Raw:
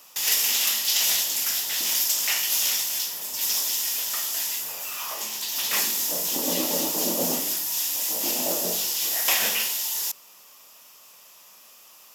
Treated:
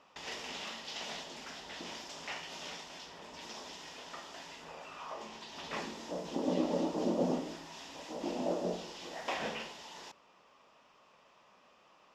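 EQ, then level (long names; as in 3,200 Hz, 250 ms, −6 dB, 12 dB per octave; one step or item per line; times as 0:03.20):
head-to-tape spacing loss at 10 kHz 40 dB
dynamic equaliser 2,100 Hz, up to −5 dB, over −50 dBFS, Q 0.72
0.0 dB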